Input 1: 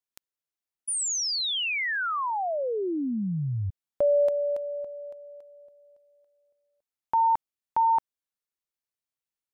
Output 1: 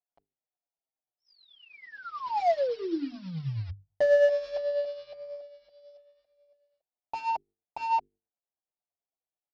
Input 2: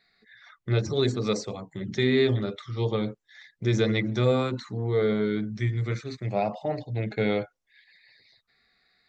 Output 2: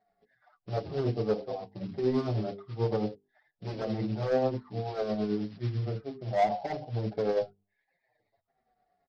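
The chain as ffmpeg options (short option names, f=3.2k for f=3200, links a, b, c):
-filter_complex "[0:a]lowpass=f=730:t=q:w=4.1,aresample=11025,acrusher=bits=5:mode=log:mix=0:aa=0.000001,aresample=44100,crystalizer=i=1:c=0,asoftclip=type=tanh:threshold=-15dB,bandreject=f=50:t=h:w=6,bandreject=f=100:t=h:w=6,bandreject=f=150:t=h:w=6,bandreject=f=200:t=h:w=6,bandreject=f=250:t=h:w=6,bandreject=f=300:t=h:w=6,bandreject=f=350:t=h:w=6,bandreject=f=400:t=h:w=6,bandreject=f=450:t=h:w=6,tremolo=f=9.2:d=0.47,asplit=2[a][b];[b]adelay=6.4,afreqshift=-1.7[c];[a][c]amix=inputs=2:normalize=1"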